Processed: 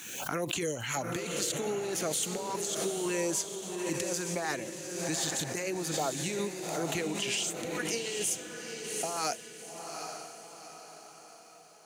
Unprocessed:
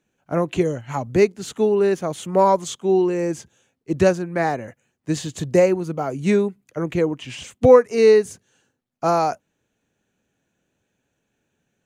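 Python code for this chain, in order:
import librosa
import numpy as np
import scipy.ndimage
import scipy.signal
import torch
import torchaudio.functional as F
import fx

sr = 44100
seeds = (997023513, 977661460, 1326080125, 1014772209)

p1 = fx.filter_lfo_notch(x, sr, shape='saw_up', hz=3.6, low_hz=460.0, high_hz=2500.0, q=1.2)
p2 = fx.tilt_eq(p1, sr, slope=4.0)
p3 = fx.over_compress(p2, sr, threshold_db=-27.0, ratio=-1.0)
p4 = p3 + fx.echo_diffused(p3, sr, ms=804, feedback_pct=46, wet_db=-6, dry=0)
p5 = fx.pre_swell(p4, sr, db_per_s=41.0)
y = F.gain(torch.from_numpy(p5), -7.0).numpy()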